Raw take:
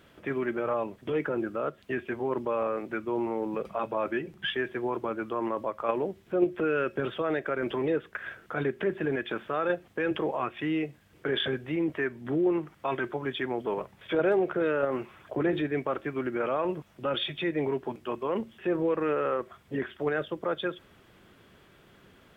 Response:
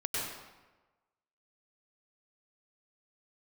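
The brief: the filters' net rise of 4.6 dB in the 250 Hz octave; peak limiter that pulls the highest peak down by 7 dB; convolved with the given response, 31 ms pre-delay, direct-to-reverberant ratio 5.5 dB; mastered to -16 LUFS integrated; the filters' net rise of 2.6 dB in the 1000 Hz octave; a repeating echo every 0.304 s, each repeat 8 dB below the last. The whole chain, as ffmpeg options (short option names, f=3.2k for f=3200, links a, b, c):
-filter_complex "[0:a]equalizer=f=250:t=o:g=6.5,equalizer=f=1k:t=o:g=3,alimiter=limit=-18dB:level=0:latency=1,aecho=1:1:304|608|912|1216|1520:0.398|0.159|0.0637|0.0255|0.0102,asplit=2[a][b];[1:a]atrim=start_sample=2205,adelay=31[c];[b][c]afir=irnorm=-1:irlink=0,volume=-11.5dB[d];[a][d]amix=inputs=2:normalize=0,volume=11dB"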